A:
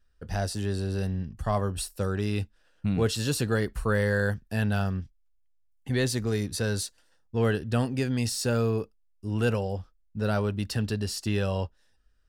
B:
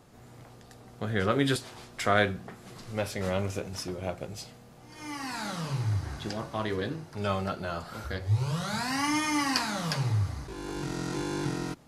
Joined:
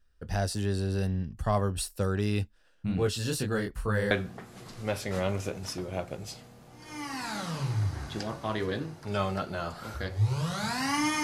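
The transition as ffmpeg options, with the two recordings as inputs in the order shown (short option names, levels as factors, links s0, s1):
-filter_complex "[0:a]asplit=3[s0][s1][s2];[s0]afade=t=out:st=2.74:d=0.02[s3];[s1]flanger=delay=20:depth=6:speed=2.3,afade=t=in:st=2.74:d=0.02,afade=t=out:st=4.11:d=0.02[s4];[s2]afade=t=in:st=4.11:d=0.02[s5];[s3][s4][s5]amix=inputs=3:normalize=0,apad=whole_dur=11.23,atrim=end=11.23,atrim=end=4.112[s6];[1:a]atrim=start=2.208:end=9.33[s7];[s6][s7]acrossfade=d=0.004:c1=hsin:c2=hsin"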